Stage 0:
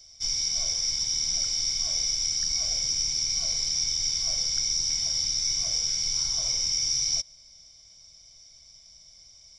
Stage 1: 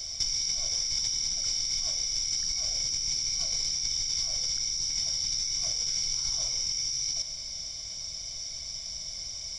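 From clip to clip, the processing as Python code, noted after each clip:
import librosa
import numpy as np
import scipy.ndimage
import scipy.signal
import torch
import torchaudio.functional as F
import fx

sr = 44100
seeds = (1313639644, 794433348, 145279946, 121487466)

y = fx.over_compress(x, sr, threshold_db=-36.0, ratio=-1.0)
y = y * librosa.db_to_amplitude(6.0)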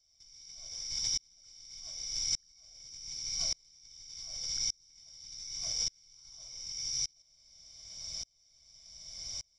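y = fx.tremolo_decay(x, sr, direction='swelling', hz=0.85, depth_db=36)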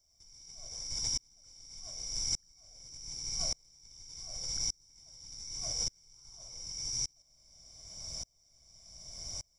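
y = fx.curve_eq(x, sr, hz=(860.0, 3800.0, 8300.0), db=(0, -15, 1))
y = y * librosa.db_to_amplitude(6.0)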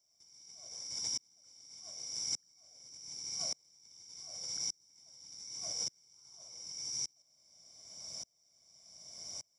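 y = scipy.signal.sosfilt(scipy.signal.butter(2, 190.0, 'highpass', fs=sr, output='sos'), x)
y = y * librosa.db_to_amplitude(-3.0)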